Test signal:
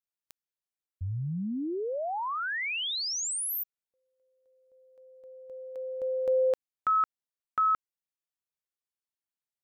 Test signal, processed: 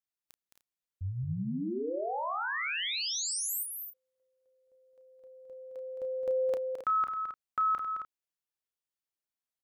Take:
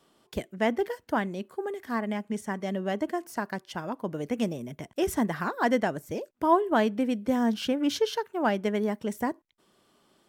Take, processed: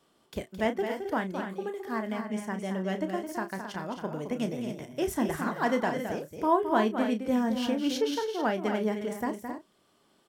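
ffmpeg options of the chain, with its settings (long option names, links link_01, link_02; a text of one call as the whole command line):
ffmpeg -i in.wav -filter_complex "[0:a]asplit=2[link_01][link_02];[link_02]adelay=32,volume=-9.5dB[link_03];[link_01][link_03]amix=inputs=2:normalize=0,aecho=1:1:215.7|268.2:0.398|0.355,volume=-3dB" out.wav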